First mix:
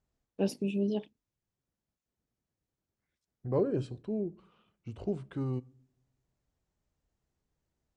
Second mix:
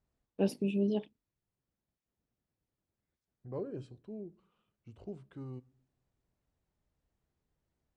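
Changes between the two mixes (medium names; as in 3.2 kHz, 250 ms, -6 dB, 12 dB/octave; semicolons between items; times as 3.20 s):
first voice: add peaking EQ 6.5 kHz -6 dB 0.91 oct; second voice -10.5 dB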